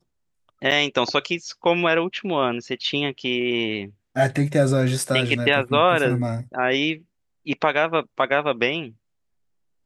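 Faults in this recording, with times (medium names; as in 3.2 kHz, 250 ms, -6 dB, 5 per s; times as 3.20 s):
0.71–0.72 s: dropout 6.6 ms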